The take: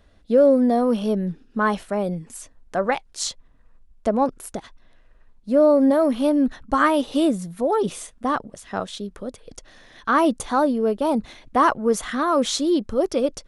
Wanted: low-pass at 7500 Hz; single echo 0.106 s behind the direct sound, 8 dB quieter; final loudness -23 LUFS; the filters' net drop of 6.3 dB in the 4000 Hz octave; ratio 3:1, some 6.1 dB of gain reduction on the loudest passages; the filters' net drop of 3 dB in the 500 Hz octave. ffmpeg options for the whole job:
-af "lowpass=7.5k,equalizer=f=500:t=o:g=-3.5,equalizer=f=4k:t=o:g=-7.5,acompressor=threshold=-22dB:ratio=3,aecho=1:1:106:0.398,volume=3.5dB"

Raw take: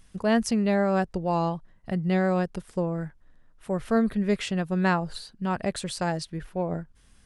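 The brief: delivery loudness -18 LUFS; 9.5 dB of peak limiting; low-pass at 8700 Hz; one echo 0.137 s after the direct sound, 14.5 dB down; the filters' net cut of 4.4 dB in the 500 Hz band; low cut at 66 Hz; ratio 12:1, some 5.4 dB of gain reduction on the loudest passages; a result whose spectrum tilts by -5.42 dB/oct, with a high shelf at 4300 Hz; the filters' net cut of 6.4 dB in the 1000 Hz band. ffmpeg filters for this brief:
-af "highpass=66,lowpass=8.7k,equalizer=f=500:t=o:g=-3.5,equalizer=f=1k:t=o:g=-8,highshelf=f=4.3k:g=8,acompressor=threshold=-25dB:ratio=12,alimiter=level_in=0.5dB:limit=-24dB:level=0:latency=1,volume=-0.5dB,aecho=1:1:137:0.188,volume=16dB"

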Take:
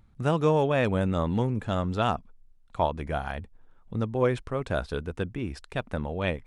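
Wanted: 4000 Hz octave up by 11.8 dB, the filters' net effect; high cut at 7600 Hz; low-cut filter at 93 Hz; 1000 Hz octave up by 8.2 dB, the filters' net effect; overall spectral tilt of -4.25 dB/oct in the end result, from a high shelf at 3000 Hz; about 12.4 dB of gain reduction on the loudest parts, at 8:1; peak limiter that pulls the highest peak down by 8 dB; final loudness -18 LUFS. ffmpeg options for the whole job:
-af "highpass=93,lowpass=7.6k,equalizer=f=1k:t=o:g=9,highshelf=f=3k:g=8.5,equalizer=f=4k:t=o:g=8.5,acompressor=threshold=-25dB:ratio=8,volume=15.5dB,alimiter=limit=-4dB:level=0:latency=1"

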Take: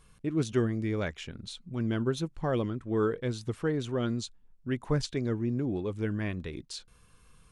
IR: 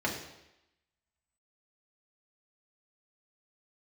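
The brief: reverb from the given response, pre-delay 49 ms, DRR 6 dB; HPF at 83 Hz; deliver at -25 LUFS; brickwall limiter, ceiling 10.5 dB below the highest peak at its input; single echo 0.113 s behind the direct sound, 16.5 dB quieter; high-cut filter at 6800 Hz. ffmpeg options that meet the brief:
-filter_complex "[0:a]highpass=83,lowpass=6.8k,alimiter=level_in=1dB:limit=-24dB:level=0:latency=1,volume=-1dB,aecho=1:1:113:0.15,asplit=2[a][b];[1:a]atrim=start_sample=2205,adelay=49[c];[b][c]afir=irnorm=-1:irlink=0,volume=-14.5dB[d];[a][d]amix=inputs=2:normalize=0,volume=9dB"

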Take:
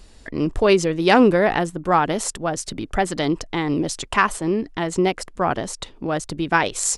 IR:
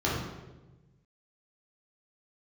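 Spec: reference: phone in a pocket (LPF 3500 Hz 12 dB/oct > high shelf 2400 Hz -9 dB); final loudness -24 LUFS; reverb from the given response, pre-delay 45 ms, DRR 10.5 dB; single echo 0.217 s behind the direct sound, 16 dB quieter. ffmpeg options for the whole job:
-filter_complex "[0:a]aecho=1:1:217:0.158,asplit=2[a][b];[1:a]atrim=start_sample=2205,adelay=45[c];[b][c]afir=irnorm=-1:irlink=0,volume=-22dB[d];[a][d]amix=inputs=2:normalize=0,lowpass=3.5k,highshelf=f=2.4k:g=-9,volume=-3dB"

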